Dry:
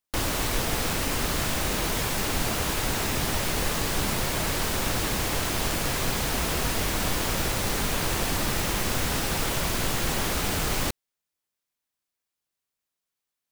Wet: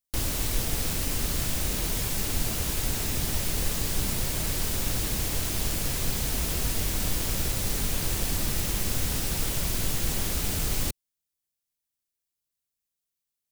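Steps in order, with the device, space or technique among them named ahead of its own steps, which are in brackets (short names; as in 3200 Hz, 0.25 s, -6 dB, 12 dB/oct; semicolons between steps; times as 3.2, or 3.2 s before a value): smiley-face EQ (low shelf 140 Hz +8 dB; bell 1100 Hz -5 dB 1.9 oct; high shelf 5100 Hz +7.5 dB); gain -5.5 dB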